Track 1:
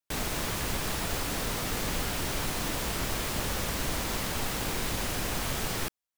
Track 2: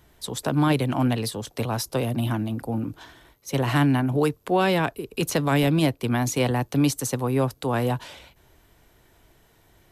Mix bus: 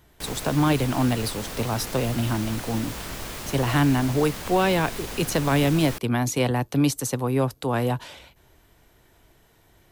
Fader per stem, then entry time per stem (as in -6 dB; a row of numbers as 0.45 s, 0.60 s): -3.0 dB, 0.0 dB; 0.10 s, 0.00 s